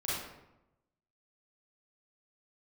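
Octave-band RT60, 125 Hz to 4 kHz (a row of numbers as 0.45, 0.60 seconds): 1.2, 1.0, 0.95, 0.90, 0.75, 0.55 seconds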